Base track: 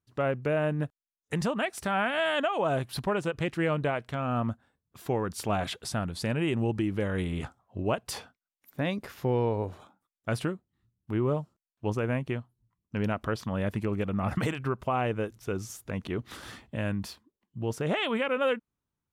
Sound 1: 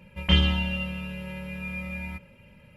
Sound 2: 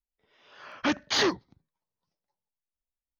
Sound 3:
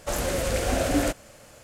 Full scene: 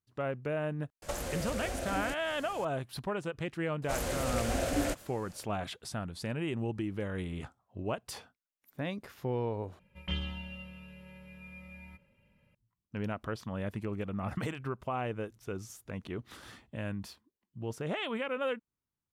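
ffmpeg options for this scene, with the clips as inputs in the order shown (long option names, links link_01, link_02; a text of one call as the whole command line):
ffmpeg -i bed.wav -i cue0.wav -i cue1.wav -i cue2.wav -filter_complex "[3:a]asplit=2[link_01][link_02];[0:a]volume=-6.5dB[link_03];[link_01]acompressor=threshold=-36dB:ratio=5:attack=23:release=379:knee=1:detection=peak[link_04];[link_03]asplit=2[link_05][link_06];[link_05]atrim=end=9.794[link_07];[1:a]atrim=end=2.76,asetpts=PTS-STARTPTS,volume=-15dB[link_08];[link_06]atrim=start=12.546[link_09];[link_04]atrim=end=1.63,asetpts=PTS-STARTPTS,afade=type=in:duration=0.004:curve=hsin,afade=type=out:start_time=1.626:duration=0.004:curve=hsin,adelay=1020[link_10];[link_02]atrim=end=1.63,asetpts=PTS-STARTPTS,volume=-7dB,afade=type=in:duration=0.004:curve=hsin,afade=type=out:start_time=1.626:duration=0.004:curve=hsin,adelay=3820[link_11];[link_07][link_08]acrossfade=duration=0.004:curve1=hsin:curve2=hsin[link_12];[link_12][link_09]acrossfade=duration=0.004:curve1=hsin:curve2=hsin[link_13];[link_13][link_10][link_11]amix=inputs=3:normalize=0" out.wav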